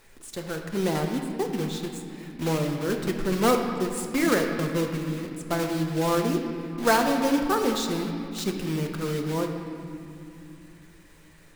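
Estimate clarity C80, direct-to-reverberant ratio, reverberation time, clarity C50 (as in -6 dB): 6.0 dB, 3.0 dB, 2.7 s, 4.5 dB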